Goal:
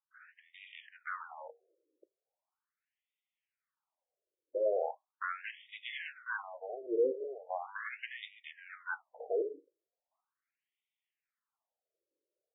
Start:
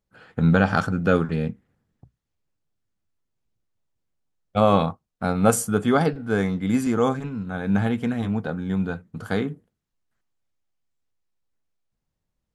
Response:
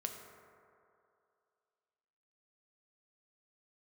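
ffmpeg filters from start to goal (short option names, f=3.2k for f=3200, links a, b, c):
-af "acompressor=threshold=-23dB:ratio=3,asoftclip=type=tanh:threshold=-25dB,dynaudnorm=f=830:g=3:m=10.5dB,afftfilt=real='re*between(b*sr/1024,420*pow(2700/420,0.5+0.5*sin(2*PI*0.39*pts/sr))/1.41,420*pow(2700/420,0.5+0.5*sin(2*PI*0.39*pts/sr))*1.41)':imag='im*between(b*sr/1024,420*pow(2700/420,0.5+0.5*sin(2*PI*0.39*pts/sr))/1.41,420*pow(2700/420,0.5+0.5*sin(2*PI*0.39*pts/sr))*1.41)':win_size=1024:overlap=0.75,volume=-6.5dB"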